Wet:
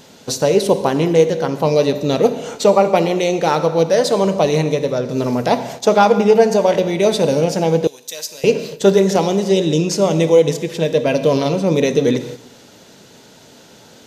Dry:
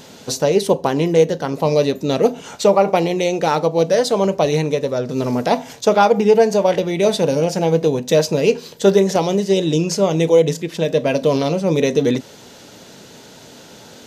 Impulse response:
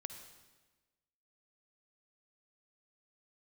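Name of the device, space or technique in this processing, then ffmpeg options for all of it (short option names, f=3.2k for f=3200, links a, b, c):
keyed gated reverb: -filter_complex "[0:a]asplit=3[a][b][c];[1:a]atrim=start_sample=2205[d];[b][d]afir=irnorm=-1:irlink=0[e];[c]apad=whole_len=620074[f];[e][f]sidechaingate=range=-9dB:threshold=-37dB:ratio=16:detection=peak,volume=7.5dB[g];[a][g]amix=inputs=2:normalize=0,asettb=1/sr,asplit=3[h][i][j];[h]atrim=end=7.874[k];[i]atrim=start=7.87:end=8.44,asetpts=PTS-STARTPTS,afade=t=in:d=0.004:c=qsin,afade=t=out:st=0.566:d=0.004:c=qsin,aderivative[l];[j]atrim=start=8.436[m];[k][l]acrossfade=d=0.004:c1=hsin:c2=qsin[n];[n][m]acrossfade=d=0.004:c1=qsin:c2=hsin,volume=-7dB"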